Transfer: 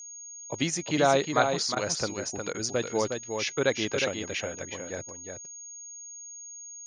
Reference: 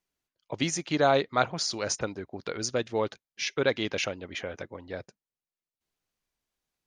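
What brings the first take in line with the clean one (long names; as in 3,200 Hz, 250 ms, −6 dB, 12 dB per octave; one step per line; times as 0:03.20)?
notch filter 6,600 Hz, Q 30
repair the gap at 0:01.75/0:02.53, 13 ms
echo removal 361 ms −5.5 dB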